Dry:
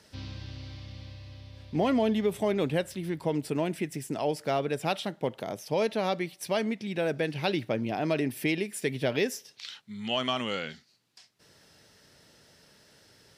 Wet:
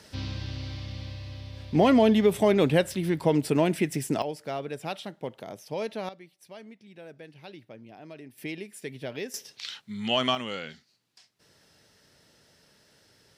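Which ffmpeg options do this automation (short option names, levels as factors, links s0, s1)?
-af "asetnsamples=n=441:p=0,asendcmd='4.22 volume volume -5dB;6.09 volume volume -17dB;8.38 volume volume -8dB;9.34 volume volume 4dB;10.35 volume volume -2.5dB',volume=2"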